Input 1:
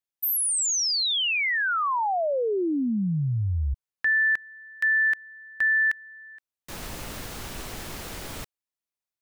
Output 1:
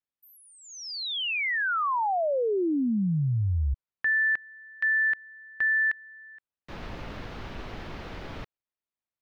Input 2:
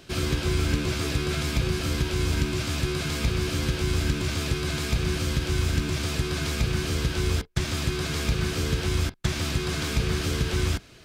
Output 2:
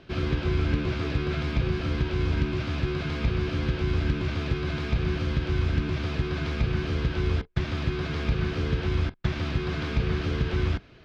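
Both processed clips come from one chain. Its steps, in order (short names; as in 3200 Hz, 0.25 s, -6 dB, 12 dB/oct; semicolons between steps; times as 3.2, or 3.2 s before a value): air absorption 270 m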